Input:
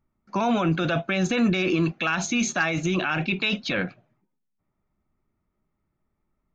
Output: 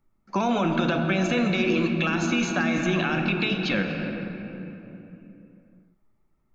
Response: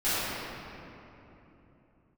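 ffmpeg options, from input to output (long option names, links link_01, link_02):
-filter_complex "[0:a]asplit=2[link_01][link_02];[link_02]lowshelf=frequency=240:gain=7[link_03];[1:a]atrim=start_sample=2205[link_04];[link_03][link_04]afir=irnorm=-1:irlink=0,volume=-19dB[link_05];[link_01][link_05]amix=inputs=2:normalize=0,acrossover=split=520|4300[link_06][link_07][link_08];[link_06]acompressor=threshold=-23dB:ratio=4[link_09];[link_07]acompressor=threshold=-27dB:ratio=4[link_10];[link_08]acompressor=threshold=-45dB:ratio=4[link_11];[link_09][link_10][link_11]amix=inputs=3:normalize=0,equalizer=frequency=86:width_type=o:width=1.4:gain=-4.5,volume=1.5dB"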